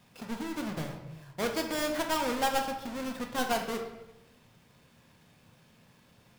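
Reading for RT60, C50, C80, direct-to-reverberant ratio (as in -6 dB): 0.95 s, 6.5 dB, 9.0 dB, 2.5 dB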